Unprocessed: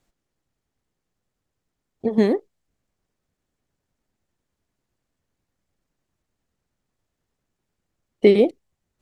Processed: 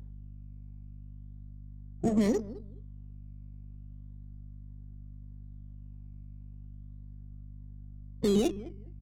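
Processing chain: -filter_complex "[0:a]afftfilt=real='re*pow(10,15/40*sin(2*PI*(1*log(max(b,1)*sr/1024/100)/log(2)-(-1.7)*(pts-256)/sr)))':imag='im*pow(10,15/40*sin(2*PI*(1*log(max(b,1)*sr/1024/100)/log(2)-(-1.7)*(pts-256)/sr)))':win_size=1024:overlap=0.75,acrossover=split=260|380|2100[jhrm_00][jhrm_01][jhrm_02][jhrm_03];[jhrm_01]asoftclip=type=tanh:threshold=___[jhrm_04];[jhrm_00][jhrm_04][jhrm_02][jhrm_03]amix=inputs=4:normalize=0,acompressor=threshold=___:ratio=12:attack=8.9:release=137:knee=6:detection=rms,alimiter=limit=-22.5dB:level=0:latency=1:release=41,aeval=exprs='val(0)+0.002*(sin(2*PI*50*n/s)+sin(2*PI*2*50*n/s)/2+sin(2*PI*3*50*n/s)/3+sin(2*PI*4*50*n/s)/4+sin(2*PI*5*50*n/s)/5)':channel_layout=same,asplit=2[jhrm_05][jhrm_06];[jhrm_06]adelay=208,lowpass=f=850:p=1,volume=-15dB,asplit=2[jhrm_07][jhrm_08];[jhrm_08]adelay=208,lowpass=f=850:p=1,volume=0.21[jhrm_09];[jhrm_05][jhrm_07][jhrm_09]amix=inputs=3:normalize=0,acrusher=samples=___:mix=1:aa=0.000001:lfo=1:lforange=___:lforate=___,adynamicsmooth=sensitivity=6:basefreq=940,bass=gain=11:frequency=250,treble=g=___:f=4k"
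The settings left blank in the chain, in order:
-18dB, -19dB, 12, 12, 0.36, 12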